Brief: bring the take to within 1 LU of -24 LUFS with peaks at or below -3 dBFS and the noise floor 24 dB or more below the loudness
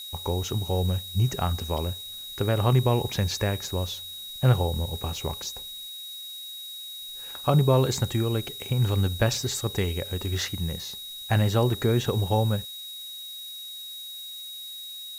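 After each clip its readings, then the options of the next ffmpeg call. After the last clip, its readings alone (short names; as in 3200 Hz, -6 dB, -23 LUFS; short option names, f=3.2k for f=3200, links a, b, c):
steady tone 3800 Hz; tone level -37 dBFS; noise floor -39 dBFS; noise floor target -52 dBFS; loudness -27.5 LUFS; peak -8.5 dBFS; loudness target -24.0 LUFS
-> -af "bandreject=f=3.8k:w=30"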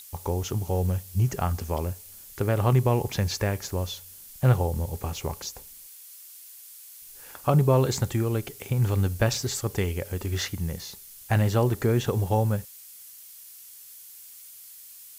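steady tone none; noise floor -47 dBFS; noise floor target -51 dBFS
-> -af "afftdn=nr=6:nf=-47"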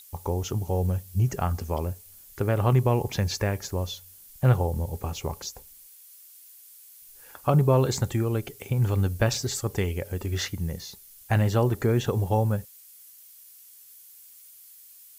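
noise floor -51 dBFS; loudness -26.5 LUFS; peak -8.5 dBFS; loudness target -24.0 LUFS
-> -af "volume=2.5dB"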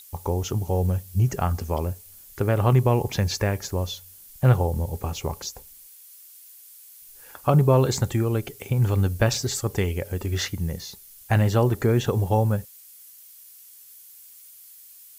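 loudness -24.0 LUFS; peak -6.0 dBFS; noise floor -48 dBFS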